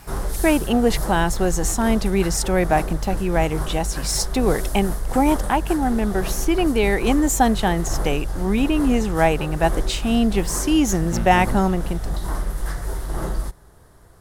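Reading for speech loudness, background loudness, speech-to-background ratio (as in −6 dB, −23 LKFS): −21.0 LKFS, −29.0 LKFS, 8.0 dB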